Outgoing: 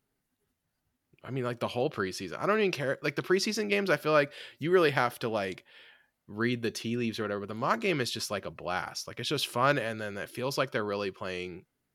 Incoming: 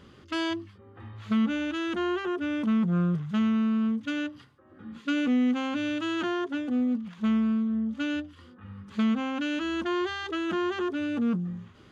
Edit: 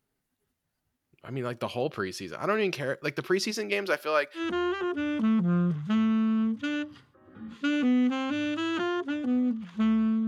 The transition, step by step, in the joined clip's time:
outgoing
3.51–4.42 HPF 190 Hz -> 700 Hz
4.38 switch to incoming from 1.82 s, crossfade 0.08 s

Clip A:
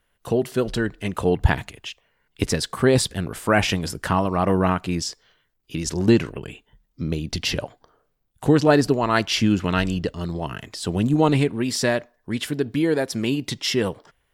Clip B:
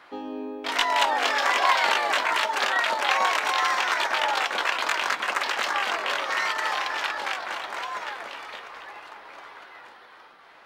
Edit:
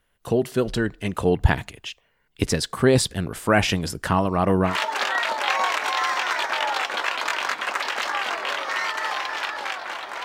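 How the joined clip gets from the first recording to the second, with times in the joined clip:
clip A
4.7 switch to clip B from 2.31 s, crossfade 0.14 s

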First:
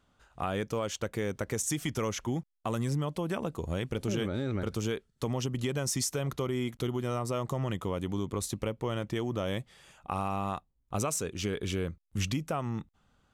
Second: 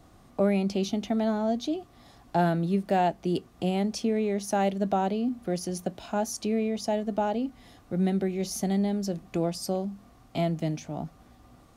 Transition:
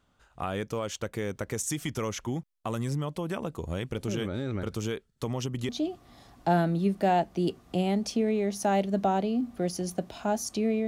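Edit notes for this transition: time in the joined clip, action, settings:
first
5.69 switch to second from 1.57 s

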